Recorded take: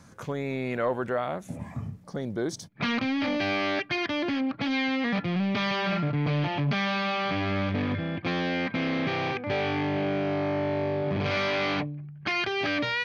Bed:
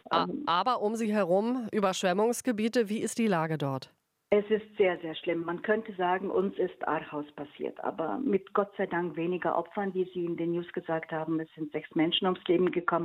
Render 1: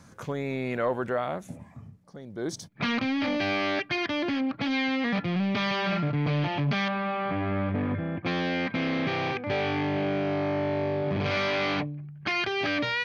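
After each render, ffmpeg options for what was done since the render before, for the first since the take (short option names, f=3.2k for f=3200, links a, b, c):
-filter_complex "[0:a]asettb=1/sr,asplit=3[a][b][c];[a]atrim=end=6.884[d];[b]atrim=start=6.88:end=8.26,asetpts=PTS-STARTPTS,afade=t=in:d=0.004:c=qsin,afade=t=out:st=1.376:d=0.004:c=qsin,lowpass=1.7k[e];[c]atrim=start=8.256[f];[d][e]acrossfade=d=0.004:c1=hsin:c2=qsin[g];[g][f]acrossfade=d=0.004:c1=qsin:c2=hsin,asplit=3[h][i][j];[h]atrim=end=1.7,asetpts=PTS-STARTPTS,afade=t=out:st=1.45:d=0.25:c=qua:silence=0.298538[k];[i]atrim=start=1.7:end=2.24,asetpts=PTS-STARTPTS,volume=-10.5dB[l];[j]atrim=start=2.24,asetpts=PTS-STARTPTS,afade=t=in:d=0.25:c=qua:silence=0.298538[m];[k][l][m]concat=n=3:v=0:a=1"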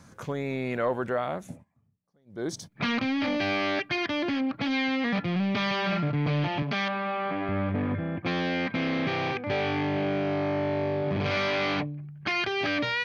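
-filter_complex "[0:a]asettb=1/sr,asplit=3[a][b][c];[a]atrim=end=6.624[d];[b]atrim=start=6.62:end=7.49,asetpts=PTS-STARTPTS,afade=t=in:d=0.004:c=qsin,afade=t=out:st=0.866:d=0.004:c=qsin,highpass=210[e];[c]atrim=start=7.486[f];[d][e]acrossfade=d=0.004:c1=hsin:c2=qsin[g];[g][f]acrossfade=d=0.004:c1=qsin:c2=hsin,asplit=3[h][i][j];[h]atrim=end=1.65,asetpts=PTS-STARTPTS,afade=t=out:st=1.5:d=0.15:silence=0.0668344[k];[i]atrim=start=1.65:end=2.25,asetpts=PTS-STARTPTS,volume=-23.5dB[l];[j]atrim=start=2.25,asetpts=PTS-STARTPTS,afade=t=in:d=0.15:silence=0.0668344[m];[k][l][m]concat=n=3:v=0:a=1"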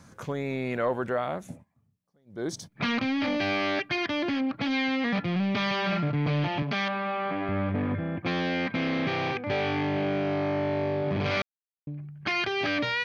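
-filter_complex "[0:a]asplit=3[a][b][c];[a]atrim=end=11.42,asetpts=PTS-STARTPTS,afade=t=out:st=11.416:d=0.004:c=hsin[d];[b]atrim=start=11.42:end=11.87,asetpts=PTS-STARTPTS,volume=0[e];[c]atrim=start=11.87,asetpts=PTS-STARTPTS,afade=t=in:d=0.004:c=hsin[f];[d][e][f]concat=n=3:v=0:a=1"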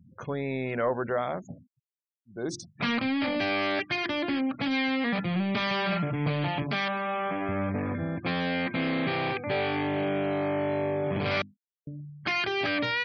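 -af "bandreject=f=50:t=h:w=6,bandreject=f=100:t=h:w=6,bandreject=f=150:t=h:w=6,bandreject=f=200:t=h:w=6,bandreject=f=250:t=h:w=6,bandreject=f=300:t=h:w=6,bandreject=f=350:t=h:w=6,afftfilt=real='re*gte(hypot(re,im),0.00708)':imag='im*gte(hypot(re,im),0.00708)':win_size=1024:overlap=0.75"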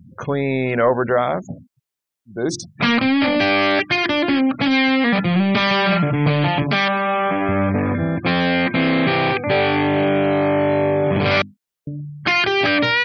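-af "volume=11dB"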